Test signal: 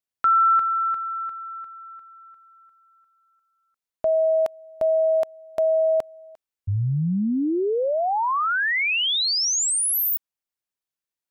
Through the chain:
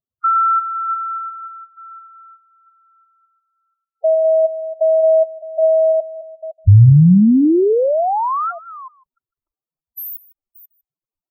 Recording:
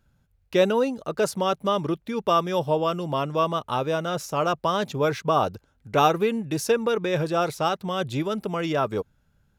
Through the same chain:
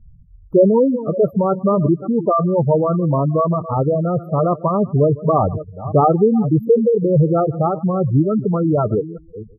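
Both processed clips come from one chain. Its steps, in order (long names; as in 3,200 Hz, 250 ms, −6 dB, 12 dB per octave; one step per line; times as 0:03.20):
delay that plays each chunk backwards 296 ms, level −14 dB
linear-phase brick-wall band-stop 1,400–12,000 Hz
high-shelf EQ 3,100 Hz +5.5 dB
single-tap delay 154 ms −19.5 dB
gate on every frequency bin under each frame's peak −10 dB strong
spectral tilt −4 dB per octave
level +4 dB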